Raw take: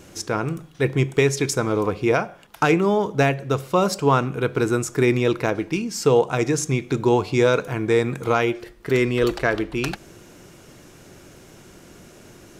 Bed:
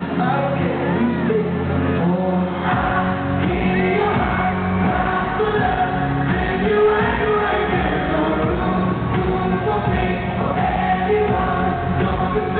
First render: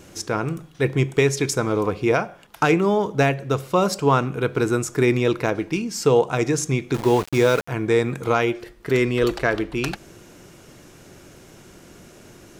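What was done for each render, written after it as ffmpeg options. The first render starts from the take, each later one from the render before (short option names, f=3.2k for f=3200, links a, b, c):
-filter_complex "[0:a]asettb=1/sr,asplit=3[a][b][c];[a]atrim=end=6.944[d];[b]atrim=start=6.94:end=7.68,asetpts=PTS-STARTPTS,afade=t=in:d=0.004:c=qsin,afade=t=out:st=0.736:d=0.004:c=qsin,aeval=exprs='val(0)*gte(abs(val(0)),0.0447)':c=same[e];[c]atrim=start=7.676[f];[d][e]acrossfade=d=0.004:c1=hsin:c2=qsin[g];[g][f]acrossfade=d=0.004:c1=qsin:c2=hsin"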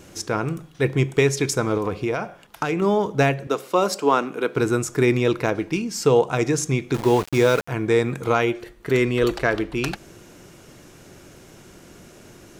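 -filter_complex "[0:a]asettb=1/sr,asplit=3[a][b][c];[a]atrim=end=1.774[d];[b]atrim=start=1.77:end=2.82,asetpts=PTS-STARTPTS,afade=t=in:d=0.004:c=qsin,afade=t=out:st=1.046:d=0.004:c=qsin,acompressor=threshold=-19dB:ratio=6:attack=3.2:release=140:knee=1:detection=peak[e];[c]atrim=start=2.816[f];[d][e]acrossfade=d=0.004:c1=hsin:c2=qsin[g];[g][f]acrossfade=d=0.004:c1=qsin:c2=hsin,asettb=1/sr,asplit=3[h][i][j];[h]atrim=end=3.474[k];[i]atrim=start=3.47:end=4.56,asetpts=PTS-STARTPTS,afade=t=in:d=0.004:c=qsin,afade=t=out:st=1.086:d=0.004:c=qsin,highpass=f=230:w=0.5412,highpass=f=230:w=1.3066[l];[j]atrim=start=4.556[m];[k][l]acrossfade=d=0.004:c1=hsin:c2=qsin[n];[n][m]acrossfade=d=0.004:c1=qsin:c2=hsin,asettb=1/sr,asplit=3[o][p][q];[o]atrim=end=8.334[r];[p]atrim=start=8.33:end=9.34,asetpts=PTS-STARTPTS,afade=t=in:d=0.004:c=qsin,afade=t=out:st=1.006:d=0.004:c=qsin,bandreject=f=5.1k:w=9.5[s];[q]atrim=start=9.336[t];[r][s]acrossfade=d=0.004:c1=hsin:c2=qsin[u];[u][t]acrossfade=d=0.004:c1=qsin:c2=hsin"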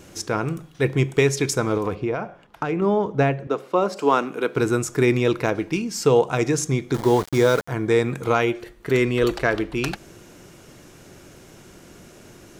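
-filter_complex "[0:a]asplit=3[a][b][c];[a]afade=t=out:st=1.94:d=0.02[d];[b]lowpass=f=1.6k:p=1,afade=t=in:st=1.94:d=0.02,afade=t=out:st=3.96:d=0.02[e];[c]afade=t=in:st=3.96:d=0.02[f];[d][e][f]amix=inputs=3:normalize=0,asettb=1/sr,asplit=3[g][h][i];[g]atrim=end=6.674[j];[h]atrim=start=6.67:end=7.91,asetpts=PTS-STARTPTS,afade=t=in:d=0.004:c=qsin,afade=t=out:st=1.236:d=0.004:c=qsin,equalizer=f=2.6k:w=6.5:g=-11[k];[i]atrim=start=7.906[l];[j][k]acrossfade=d=0.004:c1=hsin:c2=qsin[m];[m][l]acrossfade=d=0.004:c1=qsin:c2=hsin"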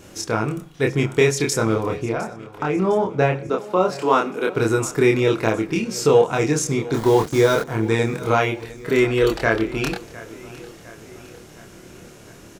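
-filter_complex "[0:a]asplit=2[a][b];[b]adelay=27,volume=-2dB[c];[a][c]amix=inputs=2:normalize=0,aecho=1:1:707|1414|2121|2828:0.112|0.0606|0.0327|0.0177"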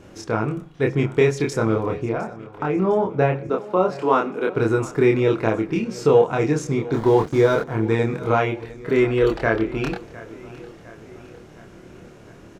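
-af "lowpass=f=1.8k:p=1"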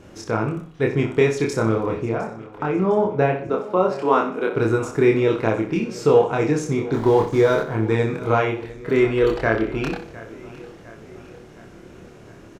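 -af "aecho=1:1:62|124|186|248:0.316|0.108|0.0366|0.0124"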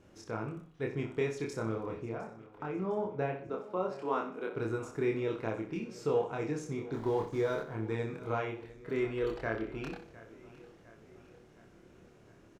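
-af "volume=-15dB"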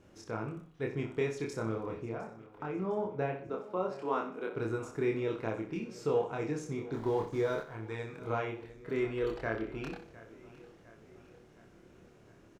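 -filter_complex "[0:a]asettb=1/sr,asplit=3[a][b][c];[a]atrim=end=7.604[d];[b]atrim=start=7.6:end=8.18,asetpts=PTS-STARTPTS,afade=t=in:d=0.004:c=qsin,afade=t=out:st=0.576:d=0.004:c=qsin,equalizer=f=230:t=o:w=2.3:g=-8.5[e];[c]atrim=start=8.176[f];[d][e]acrossfade=d=0.004:c1=hsin:c2=qsin[g];[g][f]acrossfade=d=0.004:c1=qsin:c2=hsin"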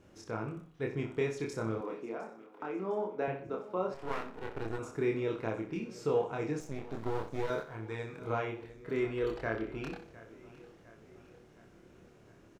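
-filter_complex "[0:a]asettb=1/sr,asplit=3[a][b][c];[a]atrim=end=1.814[d];[b]atrim=start=1.81:end=3.28,asetpts=PTS-STARTPTS,afade=t=in:d=0.004:c=qsin,afade=t=out:st=1.466:d=0.004:c=qsin,highpass=f=220:w=0.5412,highpass=f=220:w=1.3066[e];[c]atrim=start=3.276[f];[d][e]acrossfade=d=0.004:c1=hsin:c2=qsin[g];[g][f]acrossfade=d=0.004:c1=qsin:c2=hsin,asettb=1/sr,asplit=3[h][i][j];[h]atrim=end=3.944[k];[i]atrim=start=3.94:end=4.79,asetpts=PTS-STARTPTS,afade=t=in:d=0.004:c=qsin,afade=t=out:st=0.846:d=0.004:c=qsin,aeval=exprs='max(val(0),0)':c=same[l];[j]atrim=start=4.786[m];[k][l]acrossfade=d=0.004:c1=hsin:c2=qsin[n];[n][m]acrossfade=d=0.004:c1=qsin:c2=hsin,asettb=1/sr,asplit=3[o][p][q];[o]atrim=end=6.604[r];[p]atrim=start=6.6:end=7.5,asetpts=PTS-STARTPTS,afade=t=in:d=0.004:c=qsin,afade=t=out:st=0.896:d=0.004:c=qsin,aeval=exprs='max(val(0),0)':c=same[s];[q]atrim=start=7.496[t];[r][s]acrossfade=d=0.004:c1=hsin:c2=qsin[u];[u][t]acrossfade=d=0.004:c1=qsin:c2=hsin"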